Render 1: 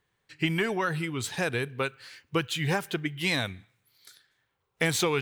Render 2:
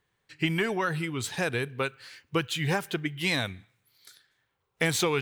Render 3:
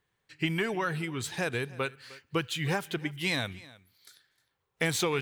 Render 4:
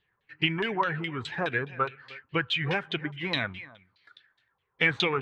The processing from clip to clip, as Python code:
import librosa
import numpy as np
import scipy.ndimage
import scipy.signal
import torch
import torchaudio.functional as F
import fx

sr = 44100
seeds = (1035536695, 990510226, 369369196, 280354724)

y1 = x
y2 = y1 + 10.0 ** (-20.5 / 20.0) * np.pad(y1, (int(308 * sr / 1000.0), 0))[:len(y1)]
y2 = y2 * 10.0 ** (-2.5 / 20.0)
y3 = fx.spec_quant(y2, sr, step_db=15)
y3 = fx.filter_lfo_lowpass(y3, sr, shape='saw_down', hz=4.8, low_hz=940.0, high_hz=3600.0, q=3.6)